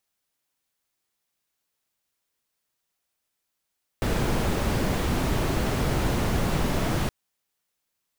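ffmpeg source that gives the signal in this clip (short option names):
-f lavfi -i "anoisesrc=c=brown:a=0.295:d=3.07:r=44100:seed=1"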